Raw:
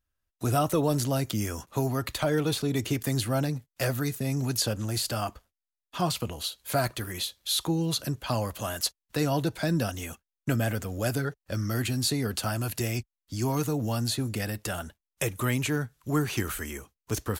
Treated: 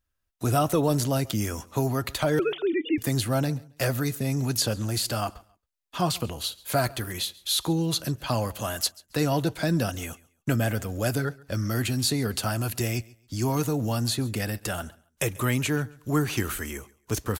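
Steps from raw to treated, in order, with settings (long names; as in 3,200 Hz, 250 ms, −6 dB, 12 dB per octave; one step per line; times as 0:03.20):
0:02.39–0:02.98: three sine waves on the formant tracks
repeating echo 137 ms, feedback 24%, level −23 dB
level +2 dB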